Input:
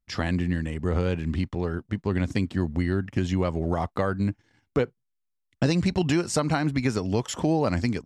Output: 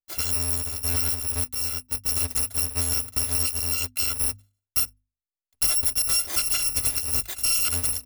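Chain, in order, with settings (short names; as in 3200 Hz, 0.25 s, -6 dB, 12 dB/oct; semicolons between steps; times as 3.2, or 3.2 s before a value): FFT order left unsorted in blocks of 256 samples; gate with hold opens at -49 dBFS; notches 50/100/150/200/250 Hz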